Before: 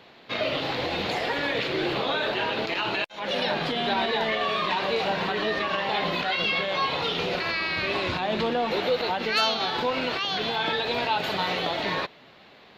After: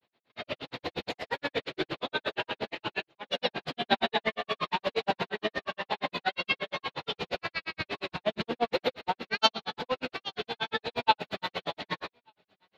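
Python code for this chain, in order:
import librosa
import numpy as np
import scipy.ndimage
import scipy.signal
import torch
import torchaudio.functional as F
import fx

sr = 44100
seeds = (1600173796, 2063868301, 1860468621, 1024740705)

p1 = fx.granulator(x, sr, seeds[0], grain_ms=89.0, per_s=8.5, spray_ms=21.0, spread_st=0)
p2 = p1 + fx.echo_single(p1, sr, ms=1186, db=-15.5, dry=0)
p3 = fx.upward_expand(p2, sr, threshold_db=-41.0, expansion=2.5)
y = p3 * 10.0 ** (6.5 / 20.0)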